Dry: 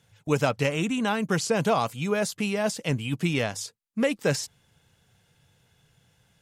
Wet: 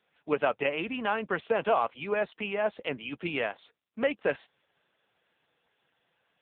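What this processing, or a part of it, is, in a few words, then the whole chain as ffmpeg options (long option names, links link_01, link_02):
telephone: -af "highpass=390,lowpass=3300" -ar 8000 -c:a libopencore_amrnb -b:a 6700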